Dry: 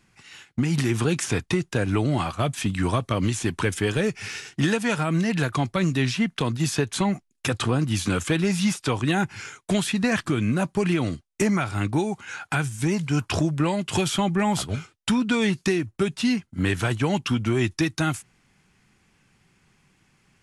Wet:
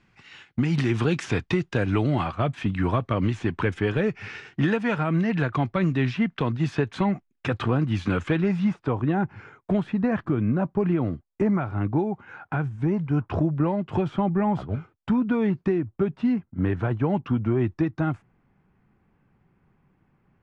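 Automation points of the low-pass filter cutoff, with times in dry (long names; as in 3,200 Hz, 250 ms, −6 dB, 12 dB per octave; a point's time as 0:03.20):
0:01.98 3,600 Hz
0:02.45 2,200 Hz
0:08.30 2,200 Hz
0:08.80 1,100 Hz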